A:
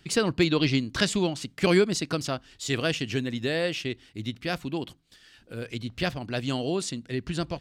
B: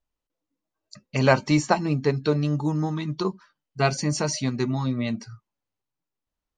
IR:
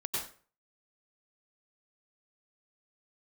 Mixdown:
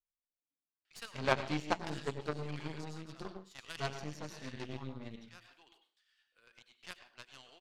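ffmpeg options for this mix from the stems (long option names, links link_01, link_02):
-filter_complex "[0:a]highpass=1200,adelay=850,volume=-5dB,asplit=2[link_01][link_02];[link_02]volume=-7.5dB[link_03];[1:a]volume=-10dB,asplit=3[link_04][link_05][link_06];[link_05]volume=-5.5dB[link_07];[link_06]apad=whole_len=372763[link_08];[link_01][link_08]sidechaincompress=threshold=-48dB:ratio=8:attack=37:release=349[link_09];[2:a]atrim=start_sample=2205[link_10];[link_03][link_07]amix=inputs=2:normalize=0[link_11];[link_11][link_10]afir=irnorm=-1:irlink=0[link_12];[link_09][link_04][link_12]amix=inputs=3:normalize=0,lowpass=frequency=3700:poles=1,aeval=exprs='0.224*(cos(1*acos(clip(val(0)/0.224,-1,1)))-cos(1*PI/2))+0.0631*(cos(3*acos(clip(val(0)/0.224,-1,1)))-cos(3*PI/2))+0.00708*(cos(8*acos(clip(val(0)/0.224,-1,1)))-cos(8*PI/2))':channel_layout=same"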